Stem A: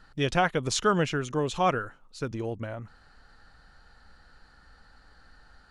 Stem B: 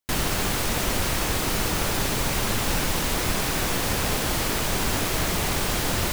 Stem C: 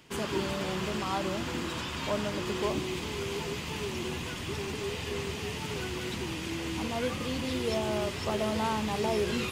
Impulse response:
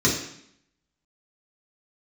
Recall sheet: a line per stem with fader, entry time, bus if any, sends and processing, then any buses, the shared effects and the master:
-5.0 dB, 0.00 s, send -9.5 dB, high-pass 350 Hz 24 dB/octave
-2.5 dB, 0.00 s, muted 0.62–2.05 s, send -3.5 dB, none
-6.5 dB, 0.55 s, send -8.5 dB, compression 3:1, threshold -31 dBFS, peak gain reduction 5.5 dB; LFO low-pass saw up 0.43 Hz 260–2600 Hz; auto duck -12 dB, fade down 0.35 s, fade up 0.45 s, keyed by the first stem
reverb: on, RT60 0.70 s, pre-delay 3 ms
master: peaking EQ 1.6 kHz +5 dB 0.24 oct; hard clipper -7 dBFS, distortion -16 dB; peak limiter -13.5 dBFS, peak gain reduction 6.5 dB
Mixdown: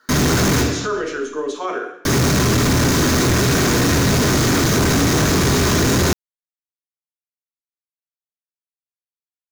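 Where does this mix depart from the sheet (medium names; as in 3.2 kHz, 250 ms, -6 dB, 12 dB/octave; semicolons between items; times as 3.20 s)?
stem B -2.5 dB -> +4.5 dB; stem C: muted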